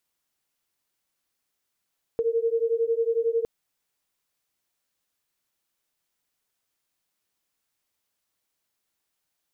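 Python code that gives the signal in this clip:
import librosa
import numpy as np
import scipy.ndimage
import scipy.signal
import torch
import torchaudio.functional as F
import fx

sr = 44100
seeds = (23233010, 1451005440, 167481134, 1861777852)

y = fx.two_tone_beats(sr, length_s=1.26, hz=454.0, beat_hz=11.0, level_db=-24.5)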